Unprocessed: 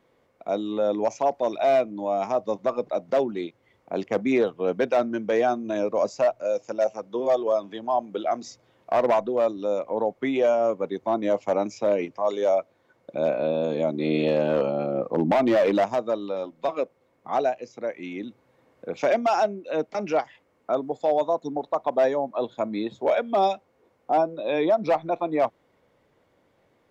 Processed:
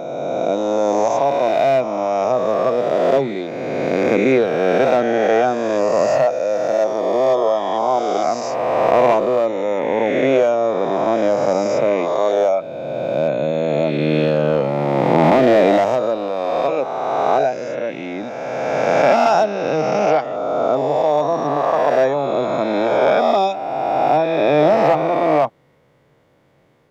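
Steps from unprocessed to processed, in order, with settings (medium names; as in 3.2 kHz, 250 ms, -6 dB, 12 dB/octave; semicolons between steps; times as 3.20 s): reverse spectral sustain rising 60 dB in 2.63 s; peaking EQ 140 Hz +10.5 dB 0.39 oct; trim +3 dB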